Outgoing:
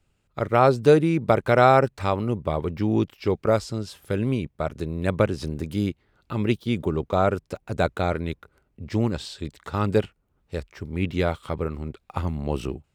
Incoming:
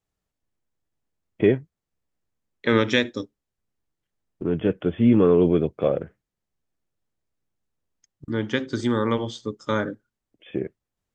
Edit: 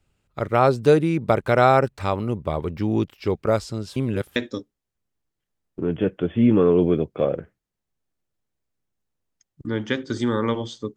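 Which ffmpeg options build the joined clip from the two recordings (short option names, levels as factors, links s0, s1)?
-filter_complex "[0:a]apad=whole_dur=10.96,atrim=end=10.96,asplit=2[s0][s1];[s0]atrim=end=3.962[s2];[s1]atrim=start=3.958:end=4.362,asetpts=PTS-STARTPTS,areverse[s3];[1:a]atrim=start=2.988:end=9.59[s4];[s2][s3]acrossfade=d=0.004:c1=hsin:c2=hsin[s5];[s5][s4]acrossfade=d=0.004:c1=hsin:c2=hsin"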